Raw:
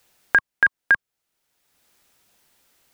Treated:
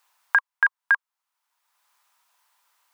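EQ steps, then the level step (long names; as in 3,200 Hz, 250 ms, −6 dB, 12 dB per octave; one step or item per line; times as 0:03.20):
high-pass with resonance 1,000 Hz, resonance Q 4.3
−6.5 dB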